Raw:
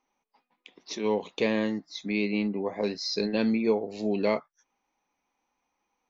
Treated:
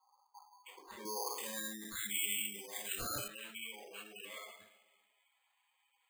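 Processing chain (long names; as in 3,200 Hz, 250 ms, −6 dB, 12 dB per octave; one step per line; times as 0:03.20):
one scale factor per block 5 bits
compressor whose output falls as the input rises −32 dBFS, ratio −1
coupled-rooms reverb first 0.55 s, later 1.7 s, DRR −10 dB
low-pass that shuts in the quiet parts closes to 2,300 Hz, open at −26 dBFS
brickwall limiter −22.5 dBFS, peak gain reduction 14 dB
band-pass filter sweep 1,000 Hz → 2,500 Hz, 0:01.14–0:02.39
gate on every frequency bin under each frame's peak −15 dB strong
low-shelf EQ 130 Hz −6.5 dB
bad sample-rate conversion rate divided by 8×, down none, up hold
0:01.05–0:03.28: bass and treble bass +11 dB, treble +13 dB
level −1.5 dB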